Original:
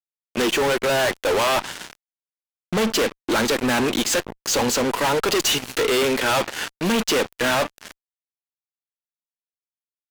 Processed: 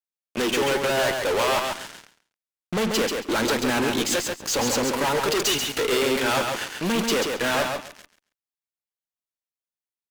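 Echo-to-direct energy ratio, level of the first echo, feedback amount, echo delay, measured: −4.5 dB, −4.5 dB, 17%, 137 ms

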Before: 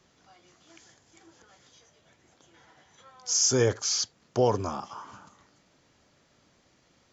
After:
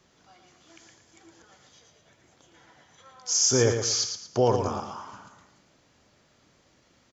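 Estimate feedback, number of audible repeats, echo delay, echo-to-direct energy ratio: 32%, 3, 114 ms, −6.5 dB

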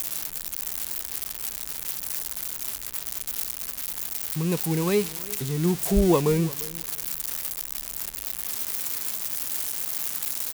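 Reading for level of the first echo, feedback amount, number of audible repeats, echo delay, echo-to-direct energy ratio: −20.0 dB, 19%, 2, 344 ms, −20.0 dB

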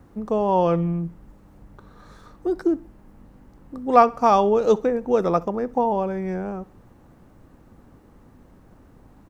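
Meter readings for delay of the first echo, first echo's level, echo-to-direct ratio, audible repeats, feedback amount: 65 ms, −22.0 dB, −21.0 dB, 2, 41%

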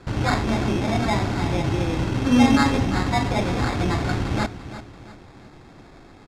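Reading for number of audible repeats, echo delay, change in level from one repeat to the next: 3, 342 ms, −8.5 dB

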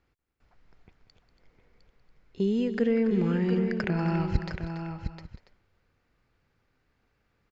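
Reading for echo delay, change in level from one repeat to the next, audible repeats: 190 ms, repeats not evenly spaced, 5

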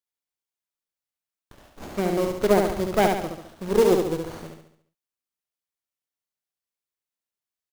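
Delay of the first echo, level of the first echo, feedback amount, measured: 70 ms, −4.0 dB, 48%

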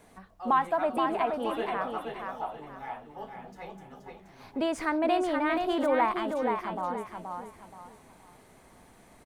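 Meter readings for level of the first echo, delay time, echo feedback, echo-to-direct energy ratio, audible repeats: −5.0 dB, 476 ms, 31%, −4.5 dB, 3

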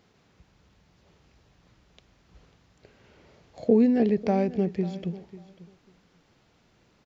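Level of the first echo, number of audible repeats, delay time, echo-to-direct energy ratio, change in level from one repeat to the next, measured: −17.5 dB, 2, 544 ms, −17.5 dB, −15.5 dB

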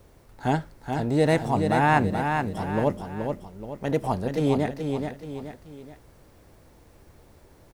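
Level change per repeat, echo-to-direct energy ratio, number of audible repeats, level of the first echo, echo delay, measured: −7.5 dB, −4.5 dB, 3, −5.5 dB, 427 ms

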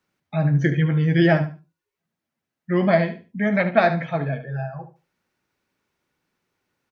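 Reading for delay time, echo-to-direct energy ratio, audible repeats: 73 ms, −11.5 dB, 2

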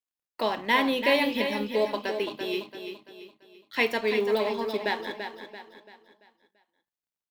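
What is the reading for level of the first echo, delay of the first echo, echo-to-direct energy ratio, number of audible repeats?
−8.0 dB, 338 ms, −7.0 dB, 4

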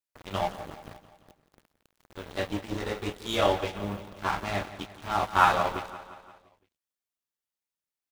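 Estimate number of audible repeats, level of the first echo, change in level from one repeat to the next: 4, −14.5 dB, −5.0 dB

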